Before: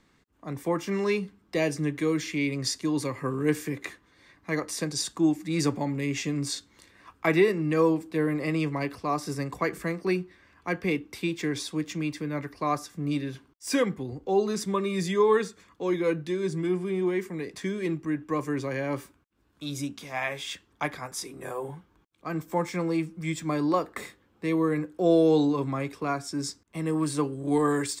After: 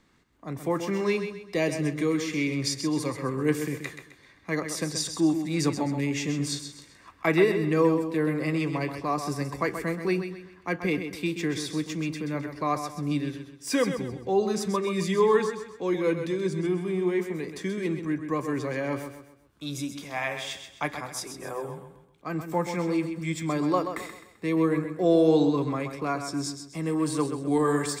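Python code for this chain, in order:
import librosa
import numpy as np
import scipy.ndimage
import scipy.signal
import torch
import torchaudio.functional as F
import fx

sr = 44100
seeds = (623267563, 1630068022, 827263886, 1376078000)

y = fx.echo_feedback(x, sr, ms=130, feedback_pct=37, wet_db=-8.5)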